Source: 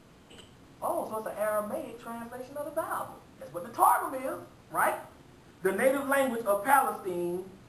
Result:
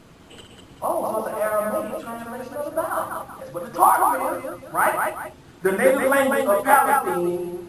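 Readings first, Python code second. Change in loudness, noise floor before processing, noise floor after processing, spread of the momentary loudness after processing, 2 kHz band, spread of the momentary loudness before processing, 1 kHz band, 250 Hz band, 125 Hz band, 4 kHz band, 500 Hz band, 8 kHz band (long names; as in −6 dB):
+8.5 dB, −56 dBFS, −48 dBFS, 16 LU, +9.0 dB, 16 LU, +8.5 dB, +8.0 dB, +8.0 dB, +8.5 dB, +8.5 dB, +8.5 dB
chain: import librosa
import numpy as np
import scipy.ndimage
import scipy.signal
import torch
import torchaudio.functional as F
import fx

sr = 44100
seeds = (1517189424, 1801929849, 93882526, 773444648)

y = fx.dereverb_blind(x, sr, rt60_s=0.56)
y = fx.echo_multitap(y, sr, ms=(63, 197, 242, 383), db=(-6.5, -4.0, -19.5, -13.5))
y = y * 10.0 ** (7.0 / 20.0)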